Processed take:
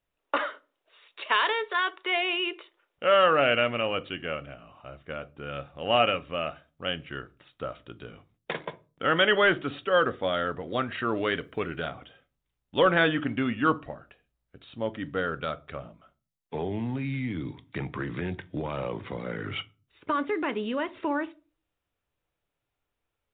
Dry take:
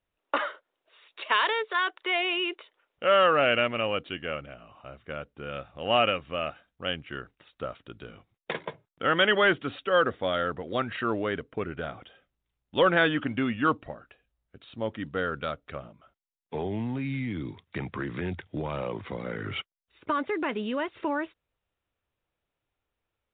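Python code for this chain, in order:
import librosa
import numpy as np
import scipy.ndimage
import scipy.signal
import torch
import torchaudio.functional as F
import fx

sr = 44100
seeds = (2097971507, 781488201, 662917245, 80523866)

y = fx.high_shelf(x, sr, hz=fx.line((11.15, 2200.0), (11.88, 2700.0)), db=12.0, at=(11.15, 11.88), fade=0.02)
y = fx.room_shoebox(y, sr, seeds[0], volume_m3=160.0, walls='furnished', distance_m=0.33)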